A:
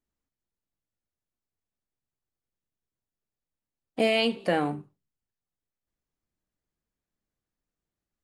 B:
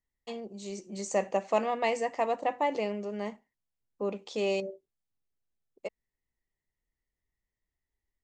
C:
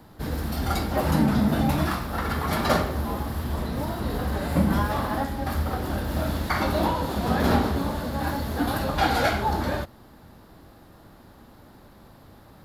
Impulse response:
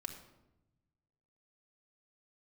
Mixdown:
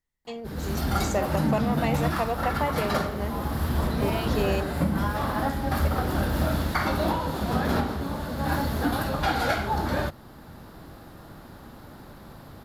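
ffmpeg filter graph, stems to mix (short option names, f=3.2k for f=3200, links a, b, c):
-filter_complex "[0:a]volume=-11.5dB[a];[1:a]acontrast=36,volume=-3dB[b];[2:a]dynaudnorm=f=260:g=3:m=14.5dB,adelay=250,volume=-10dB[c];[b][c]amix=inputs=2:normalize=0,equalizer=f=150:t=o:w=0.22:g=4.5,alimiter=limit=-14dB:level=0:latency=1:release=444,volume=0dB[d];[a][d]amix=inputs=2:normalize=0,equalizer=f=1.4k:t=o:w=0.37:g=2.5"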